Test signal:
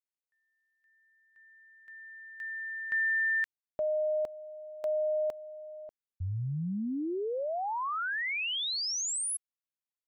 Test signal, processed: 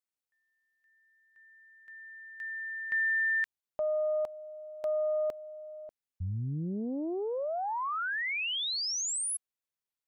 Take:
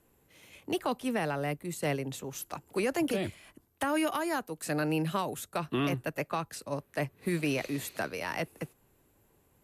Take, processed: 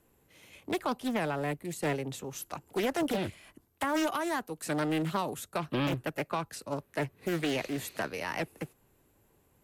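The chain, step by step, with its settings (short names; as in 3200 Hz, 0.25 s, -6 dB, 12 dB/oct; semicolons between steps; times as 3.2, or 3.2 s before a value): Doppler distortion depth 0.59 ms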